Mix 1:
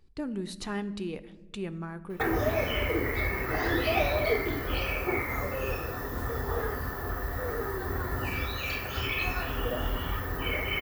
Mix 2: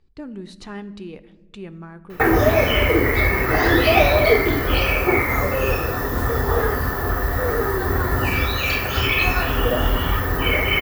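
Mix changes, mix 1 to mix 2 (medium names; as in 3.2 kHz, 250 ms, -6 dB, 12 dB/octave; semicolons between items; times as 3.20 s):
speech: add distance through air 56 m; background +11.5 dB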